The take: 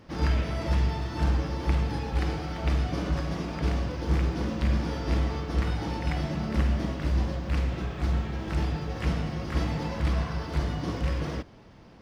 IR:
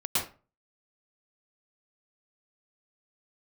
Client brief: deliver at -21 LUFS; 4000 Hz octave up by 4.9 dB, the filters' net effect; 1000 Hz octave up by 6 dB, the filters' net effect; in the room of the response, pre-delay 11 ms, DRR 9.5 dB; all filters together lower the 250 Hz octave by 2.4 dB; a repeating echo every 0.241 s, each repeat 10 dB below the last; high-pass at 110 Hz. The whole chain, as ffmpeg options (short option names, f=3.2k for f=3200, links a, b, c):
-filter_complex "[0:a]highpass=110,equalizer=f=250:t=o:g=-3.5,equalizer=f=1k:t=o:g=7.5,equalizer=f=4k:t=o:g=6,aecho=1:1:241|482|723|964:0.316|0.101|0.0324|0.0104,asplit=2[a][b];[1:a]atrim=start_sample=2205,adelay=11[c];[b][c]afir=irnorm=-1:irlink=0,volume=-18.5dB[d];[a][d]amix=inputs=2:normalize=0,volume=10dB"